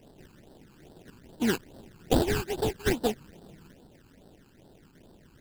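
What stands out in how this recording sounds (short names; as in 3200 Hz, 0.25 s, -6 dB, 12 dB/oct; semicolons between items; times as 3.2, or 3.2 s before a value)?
aliases and images of a low sample rate 1200 Hz, jitter 20%; phasing stages 12, 2.4 Hz, lowest notch 600–2300 Hz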